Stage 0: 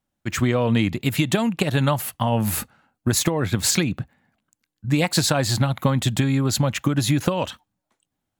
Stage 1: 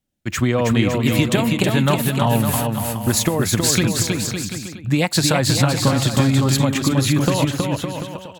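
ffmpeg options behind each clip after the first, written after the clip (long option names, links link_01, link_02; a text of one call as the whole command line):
ffmpeg -i in.wav -filter_complex "[0:a]acrossover=split=720|1600[link_01][link_02][link_03];[link_02]aeval=exprs='sgn(val(0))*max(abs(val(0))-0.00126,0)':channel_layout=same[link_04];[link_01][link_04][link_03]amix=inputs=3:normalize=0,aecho=1:1:320|560|740|875|976.2:0.631|0.398|0.251|0.158|0.1,volume=2dB" out.wav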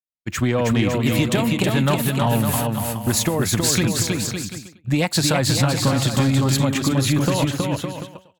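ffmpeg -i in.wav -af "agate=range=-33dB:threshold=-22dB:ratio=3:detection=peak,acontrast=65,volume=-7dB" out.wav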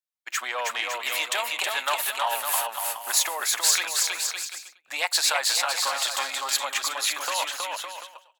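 ffmpeg -i in.wav -af "highpass=frequency=770:width=0.5412,highpass=frequency=770:width=1.3066" out.wav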